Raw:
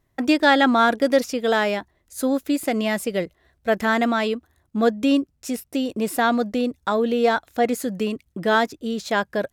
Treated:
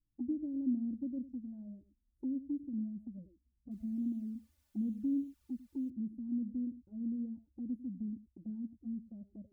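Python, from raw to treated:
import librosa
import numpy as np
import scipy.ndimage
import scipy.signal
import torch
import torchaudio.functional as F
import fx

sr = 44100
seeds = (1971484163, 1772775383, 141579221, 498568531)

y = scipy.signal.sosfilt(scipy.signal.cheby2(4, 70, 1000.0, 'lowpass', fs=sr, output='sos'), x)
y = fx.tilt_eq(y, sr, slope=3.0)
y = y + 10.0 ** (-14.0 / 20.0) * np.pad(y, (int(100 * sr / 1000.0), 0))[:len(y)]
y = fx.quant_dither(y, sr, seeds[0], bits=12, dither='triangular', at=(3.71, 5.9))
y = fx.low_shelf(y, sr, hz=110.0, db=9.0)
y = y + 0.73 * np.pad(y, (int(3.4 * sr / 1000.0), 0))[:len(y)]
y = fx.env_flanger(y, sr, rest_ms=6.5, full_db=-28.0)
y = y * librosa.db_to_amplitude(-5.5)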